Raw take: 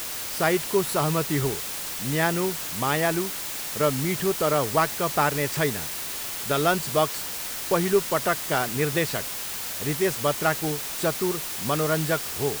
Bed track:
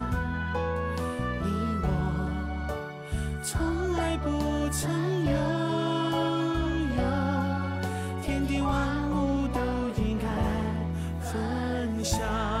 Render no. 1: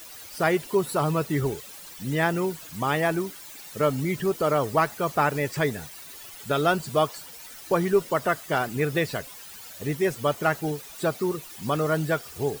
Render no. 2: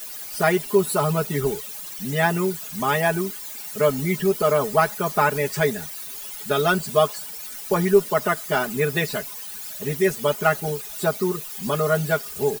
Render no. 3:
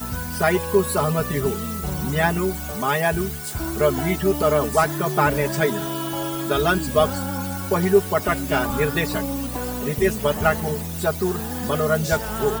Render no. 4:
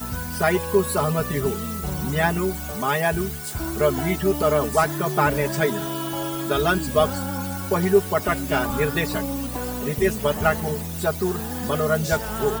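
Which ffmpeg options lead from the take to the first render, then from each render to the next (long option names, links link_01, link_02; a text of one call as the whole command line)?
ffmpeg -i in.wav -af "afftdn=noise_reduction=14:noise_floor=-33" out.wav
ffmpeg -i in.wav -af "highshelf=frequency=7800:gain=7.5,aecho=1:1:4.8:0.92" out.wav
ffmpeg -i in.wav -i bed.wav -filter_complex "[1:a]volume=-0.5dB[link_01];[0:a][link_01]amix=inputs=2:normalize=0" out.wav
ffmpeg -i in.wav -af "volume=-1dB" out.wav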